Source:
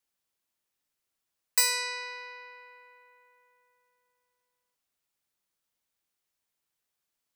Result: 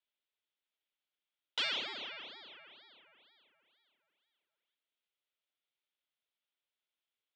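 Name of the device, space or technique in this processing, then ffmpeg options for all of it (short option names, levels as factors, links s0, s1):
voice changer toy: -af "aeval=exprs='val(0)*sin(2*PI*1600*n/s+1600*0.8/2.1*sin(2*PI*2.1*n/s))':c=same,highpass=420,equalizer=f=480:t=q:w=4:g=-4,equalizer=f=760:t=q:w=4:g=-6,equalizer=f=1100:t=q:w=4:g=-8,equalizer=f=1700:t=q:w=4:g=-5,equalizer=f=3400:t=q:w=4:g=6,lowpass=f=3600:w=0.5412,lowpass=f=3600:w=1.3066"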